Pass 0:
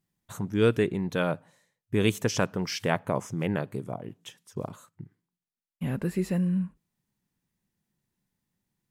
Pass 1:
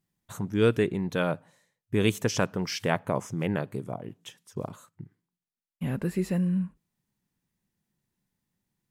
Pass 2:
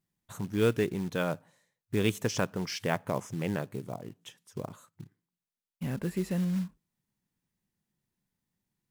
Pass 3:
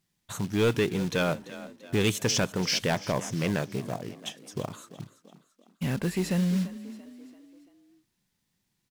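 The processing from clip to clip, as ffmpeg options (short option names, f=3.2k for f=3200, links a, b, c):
-af anull
-af "acrusher=bits=5:mode=log:mix=0:aa=0.000001,volume=-3.5dB"
-filter_complex "[0:a]equalizer=f=4.2k:w=0.5:g=7,asoftclip=type=tanh:threshold=-23dB,asplit=5[a][b][c][d][e];[b]adelay=339,afreqshift=34,volume=-16dB[f];[c]adelay=678,afreqshift=68,volume=-22.6dB[g];[d]adelay=1017,afreqshift=102,volume=-29.1dB[h];[e]adelay=1356,afreqshift=136,volume=-35.7dB[i];[a][f][g][h][i]amix=inputs=5:normalize=0,volume=5dB"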